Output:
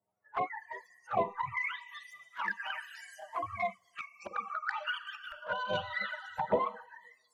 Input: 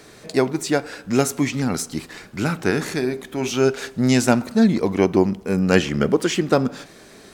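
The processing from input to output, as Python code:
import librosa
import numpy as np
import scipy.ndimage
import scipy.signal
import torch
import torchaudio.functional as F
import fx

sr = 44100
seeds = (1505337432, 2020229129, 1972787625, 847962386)

y = fx.octave_mirror(x, sr, pivot_hz=530.0)
y = fx.over_compress(y, sr, threshold_db=-25.0, ratio=-0.5, at=(3.97, 5.24), fade=0.02)
y = fx.high_shelf(y, sr, hz=8800.0, db=10.0)
y = fx.echo_feedback(y, sr, ms=519, feedback_pct=18, wet_db=-15.5)
y = fx.filter_lfo_bandpass(y, sr, shape='saw_up', hz=0.94, low_hz=600.0, high_hz=6700.0, q=1.4)
y = 10.0 ** (-15.0 / 20.0) * np.tanh(y / 10.0 ** (-15.0 / 20.0))
y = fx.bass_treble(y, sr, bass_db=-9, treble_db=11, at=(2.07, 3.4))
y = fx.rev_schroeder(y, sr, rt60_s=2.6, comb_ms=31, drr_db=10.0)
y = fx.noise_reduce_blind(y, sr, reduce_db=28)
y = fx.env_flanger(y, sr, rest_ms=9.9, full_db=-26.0)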